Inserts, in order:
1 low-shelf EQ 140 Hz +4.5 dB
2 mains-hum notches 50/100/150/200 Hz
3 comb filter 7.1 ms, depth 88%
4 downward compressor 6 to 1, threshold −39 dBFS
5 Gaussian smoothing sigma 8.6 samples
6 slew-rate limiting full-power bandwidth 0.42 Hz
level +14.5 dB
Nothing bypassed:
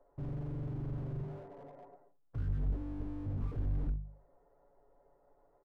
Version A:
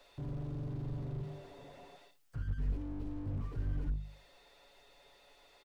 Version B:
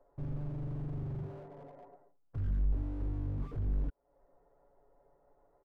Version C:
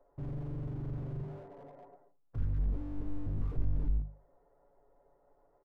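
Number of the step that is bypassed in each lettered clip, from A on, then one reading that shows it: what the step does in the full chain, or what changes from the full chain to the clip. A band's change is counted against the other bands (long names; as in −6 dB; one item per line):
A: 5, 2 kHz band +5.5 dB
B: 2, change in integrated loudness +1.5 LU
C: 4, average gain reduction 8.0 dB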